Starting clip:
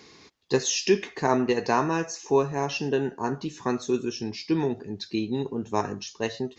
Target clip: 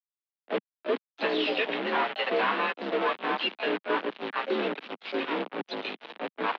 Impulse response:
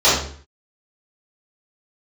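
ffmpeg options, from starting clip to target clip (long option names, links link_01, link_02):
-filter_complex "[0:a]tiltshelf=frequency=660:gain=-5.5,aresample=11025,acrusher=bits=5:mode=log:mix=0:aa=0.000001,aresample=44100,acrossover=split=470[link_01][link_02];[link_02]adelay=700[link_03];[link_01][link_03]amix=inputs=2:normalize=0,volume=23.5dB,asoftclip=hard,volume=-23.5dB,acrusher=bits=4:mix=0:aa=0.000001,asplit=4[link_04][link_05][link_06][link_07];[link_05]asetrate=37084,aresample=44100,atempo=1.18921,volume=-16dB[link_08];[link_06]asetrate=52444,aresample=44100,atempo=0.840896,volume=-16dB[link_09];[link_07]asetrate=66075,aresample=44100,atempo=0.66742,volume=-5dB[link_10];[link_04][link_08][link_09][link_10]amix=inputs=4:normalize=0,highpass=frequency=150:width_type=q:width=0.5412,highpass=frequency=150:width_type=q:width=1.307,lowpass=frequency=3400:width_type=q:width=0.5176,lowpass=frequency=3400:width_type=q:width=0.7071,lowpass=frequency=3400:width_type=q:width=1.932,afreqshift=56"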